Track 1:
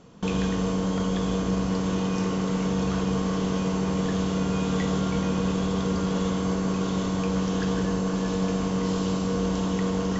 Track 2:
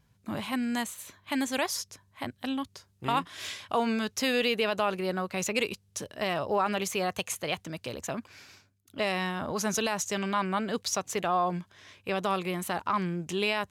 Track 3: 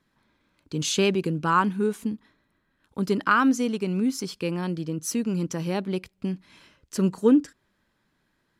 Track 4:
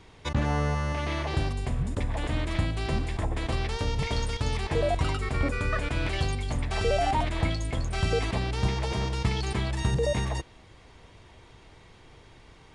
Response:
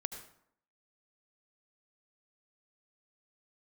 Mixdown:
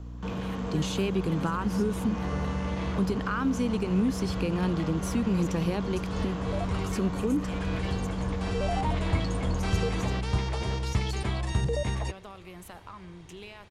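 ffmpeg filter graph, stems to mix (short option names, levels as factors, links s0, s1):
-filter_complex "[0:a]acrossover=split=4100[s0][s1];[s1]acompressor=threshold=0.00251:ratio=4:attack=1:release=60[s2];[s0][s2]amix=inputs=2:normalize=0,equalizer=f=1000:t=o:w=1.5:g=4.5,asoftclip=type=tanh:threshold=0.0596,volume=0.355,asplit=2[s3][s4];[s4]volume=0.531[s5];[1:a]acompressor=threshold=0.0282:ratio=6,volume=0.2,asplit=3[s6][s7][s8];[s6]atrim=end=2.55,asetpts=PTS-STARTPTS,afade=t=out:st=2.546:d=0.004:c=hsin[s9];[s7]atrim=start=2.55:end=4.6,asetpts=PTS-STARTPTS,volume=0[s10];[s8]atrim=start=4.6,asetpts=PTS-STARTPTS,afade=t=in:d=0.004:c=hsin[s11];[s9][s10][s11]concat=n=3:v=0:a=1,asplit=2[s12][s13];[s13]volume=0.531[s14];[2:a]alimiter=limit=0.1:level=0:latency=1:release=185,acrossover=split=2900[s15][s16];[s16]acompressor=threshold=0.0112:ratio=4:attack=1:release=60[s17];[s15][s17]amix=inputs=2:normalize=0,aeval=exprs='val(0)+0.00891*(sin(2*PI*60*n/s)+sin(2*PI*2*60*n/s)/2+sin(2*PI*3*60*n/s)/3+sin(2*PI*4*60*n/s)/4+sin(2*PI*5*60*n/s)/5)':c=same,volume=1.19,asplit=2[s18][s19];[3:a]adelay=1700,volume=0.75[s20];[s19]apad=whole_len=636878[s21];[s20][s21]sidechaincompress=threshold=0.00708:ratio=8:attack=16:release=185[s22];[4:a]atrim=start_sample=2205[s23];[s5][s14]amix=inputs=2:normalize=0[s24];[s24][s23]afir=irnorm=-1:irlink=0[s25];[s3][s12][s18][s22][s25]amix=inputs=5:normalize=0,equalizer=f=84:t=o:w=0.56:g=5.5,acrossover=split=230[s26][s27];[s27]acompressor=threshold=0.0398:ratio=3[s28];[s26][s28]amix=inputs=2:normalize=0"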